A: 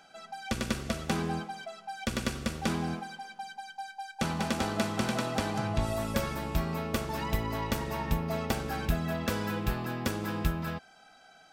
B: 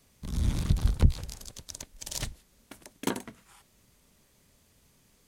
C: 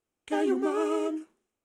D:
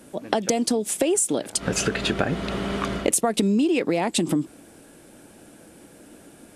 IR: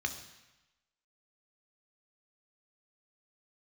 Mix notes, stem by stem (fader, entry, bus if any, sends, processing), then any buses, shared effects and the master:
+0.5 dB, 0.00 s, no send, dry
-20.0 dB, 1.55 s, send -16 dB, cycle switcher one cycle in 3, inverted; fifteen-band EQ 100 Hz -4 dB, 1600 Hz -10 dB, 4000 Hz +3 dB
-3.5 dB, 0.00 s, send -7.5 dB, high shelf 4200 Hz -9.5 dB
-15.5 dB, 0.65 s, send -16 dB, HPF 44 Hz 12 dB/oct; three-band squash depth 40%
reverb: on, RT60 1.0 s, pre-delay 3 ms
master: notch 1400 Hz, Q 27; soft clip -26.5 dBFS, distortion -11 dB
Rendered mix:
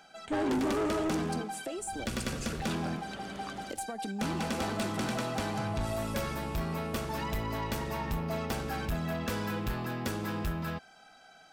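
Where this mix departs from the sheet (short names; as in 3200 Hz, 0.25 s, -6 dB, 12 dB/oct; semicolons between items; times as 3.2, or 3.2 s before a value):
stem C -3.5 dB -> +6.5 dB; master: missing notch 1400 Hz, Q 27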